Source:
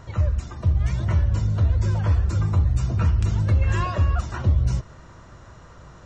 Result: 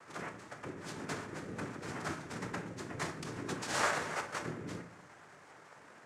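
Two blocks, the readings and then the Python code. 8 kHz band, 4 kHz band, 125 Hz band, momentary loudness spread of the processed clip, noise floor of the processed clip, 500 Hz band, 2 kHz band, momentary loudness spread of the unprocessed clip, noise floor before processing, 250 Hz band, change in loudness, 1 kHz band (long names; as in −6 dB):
can't be measured, −1.5 dB, −28.0 dB, 23 LU, −58 dBFS, −5.5 dB, −1.0 dB, 3 LU, −46 dBFS, −10.0 dB, −17.0 dB, −5.5 dB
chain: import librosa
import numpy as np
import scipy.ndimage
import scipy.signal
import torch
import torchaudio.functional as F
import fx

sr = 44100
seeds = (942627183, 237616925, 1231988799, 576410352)

y = fx.wiener(x, sr, points=15)
y = fx.highpass(y, sr, hz=1400.0, slope=6)
y = fx.noise_vocoder(y, sr, seeds[0], bands=3)
y = fx.room_shoebox(y, sr, seeds[1], volume_m3=88.0, walls='mixed', distance_m=0.37)
y = y * librosa.db_to_amplitude(1.0)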